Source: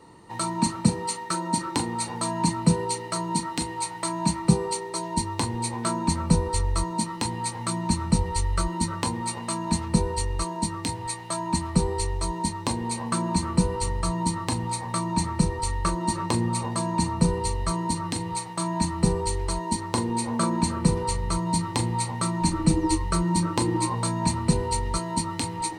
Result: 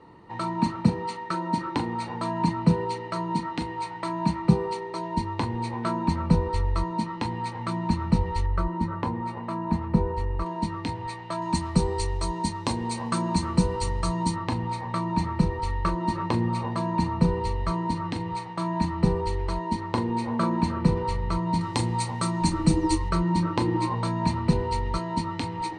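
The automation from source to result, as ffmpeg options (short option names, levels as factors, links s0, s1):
-af "asetnsamples=n=441:p=0,asendcmd='8.46 lowpass f 1600;10.46 lowpass f 3100;11.42 lowpass f 6700;14.36 lowpass f 3100;21.61 lowpass f 7500;23.09 lowpass f 3600',lowpass=2900"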